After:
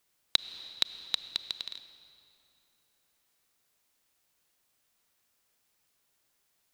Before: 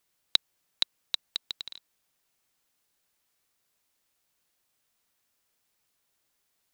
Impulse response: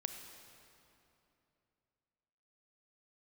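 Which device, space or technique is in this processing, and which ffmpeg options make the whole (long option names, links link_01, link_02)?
ducked reverb: -filter_complex "[0:a]asplit=3[link_01][link_02][link_03];[1:a]atrim=start_sample=2205[link_04];[link_02][link_04]afir=irnorm=-1:irlink=0[link_05];[link_03]apad=whole_len=296950[link_06];[link_05][link_06]sidechaincompress=threshold=-28dB:ratio=4:attack=27:release=259,volume=2dB[link_07];[link_01][link_07]amix=inputs=2:normalize=0,volume=-5dB"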